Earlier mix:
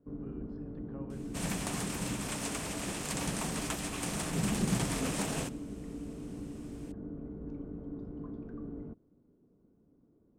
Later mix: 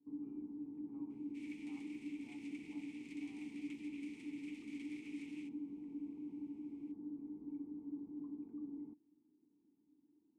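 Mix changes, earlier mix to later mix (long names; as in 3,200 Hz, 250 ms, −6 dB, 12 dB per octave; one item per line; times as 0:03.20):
second sound: add Butterworth high-pass 1,700 Hz 36 dB per octave
master: add formant filter u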